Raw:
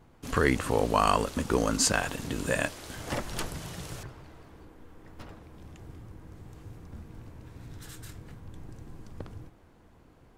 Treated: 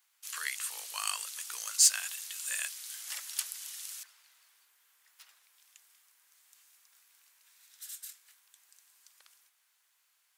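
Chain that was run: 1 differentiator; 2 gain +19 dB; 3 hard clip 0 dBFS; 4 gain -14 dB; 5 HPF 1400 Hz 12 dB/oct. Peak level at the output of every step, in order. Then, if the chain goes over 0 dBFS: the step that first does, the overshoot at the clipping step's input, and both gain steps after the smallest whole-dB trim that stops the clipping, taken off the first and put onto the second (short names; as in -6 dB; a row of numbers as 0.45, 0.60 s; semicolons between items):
-13.0, +6.0, 0.0, -14.0, -12.0 dBFS; step 2, 6.0 dB; step 2 +13 dB, step 4 -8 dB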